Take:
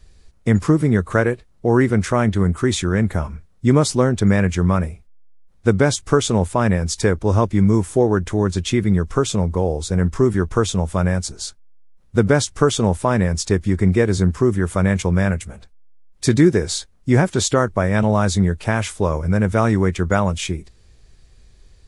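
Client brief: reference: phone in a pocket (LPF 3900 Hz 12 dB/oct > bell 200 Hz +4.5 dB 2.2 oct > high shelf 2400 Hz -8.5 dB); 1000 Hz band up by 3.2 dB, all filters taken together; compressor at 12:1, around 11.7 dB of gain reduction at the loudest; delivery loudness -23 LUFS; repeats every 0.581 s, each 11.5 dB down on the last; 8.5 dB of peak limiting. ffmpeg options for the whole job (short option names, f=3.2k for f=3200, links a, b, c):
-af "equalizer=f=1k:t=o:g=5,acompressor=threshold=-21dB:ratio=12,alimiter=limit=-16dB:level=0:latency=1,lowpass=3.9k,equalizer=f=200:t=o:w=2.2:g=4.5,highshelf=f=2.4k:g=-8.5,aecho=1:1:581|1162|1743:0.266|0.0718|0.0194,volume=3.5dB"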